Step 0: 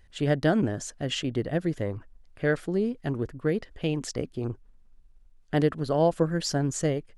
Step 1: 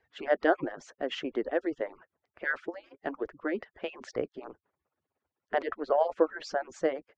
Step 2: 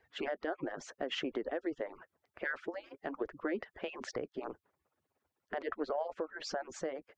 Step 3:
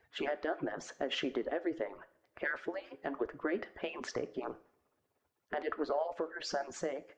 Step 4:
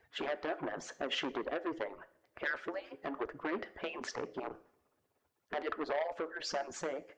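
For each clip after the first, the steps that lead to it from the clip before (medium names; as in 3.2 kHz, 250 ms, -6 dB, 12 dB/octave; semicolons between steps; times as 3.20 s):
harmonic-percussive separation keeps percussive; Chebyshev low-pass 6.1 kHz, order 3; three-band isolator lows -18 dB, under 340 Hz, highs -18 dB, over 2.4 kHz; trim +3.5 dB
compression 10:1, threshold -33 dBFS, peak gain reduction 15.5 dB; peak limiter -28 dBFS, peak gain reduction 7.5 dB; trim +2.5 dB
two-slope reverb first 0.43 s, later 1.7 s, from -24 dB, DRR 11 dB; trim +1.5 dB
transformer saturation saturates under 1.1 kHz; trim +1 dB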